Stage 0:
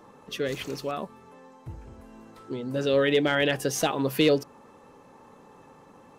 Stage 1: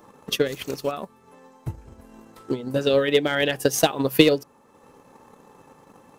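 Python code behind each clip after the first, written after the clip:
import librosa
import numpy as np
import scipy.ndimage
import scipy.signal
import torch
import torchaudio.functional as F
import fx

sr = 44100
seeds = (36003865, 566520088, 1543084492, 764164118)

y = fx.high_shelf(x, sr, hz=9100.0, db=11.0)
y = fx.transient(y, sr, attack_db=11, sustain_db=-5)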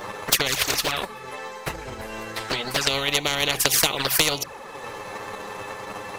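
y = fx.graphic_eq(x, sr, hz=(250, 500, 2000, 4000), db=(-10, 6, 9, 7))
y = fx.env_flanger(y, sr, rest_ms=10.7, full_db=-14.0)
y = fx.spectral_comp(y, sr, ratio=4.0)
y = y * 10.0 ** (-4.5 / 20.0)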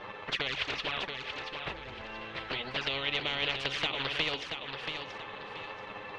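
y = 10.0 ** (-12.5 / 20.0) * np.tanh(x / 10.0 ** (-12.5 / 20.0))
y = fx.ladder_lowpass(y, sr, hz=3700.0, resonance_pct=40)
y = fx.echo_feedback(y, sr, ms=681, feedback_pct=31, wet_db=-6.5)
y = y * 10.0 ** (-2.0 / 20.0)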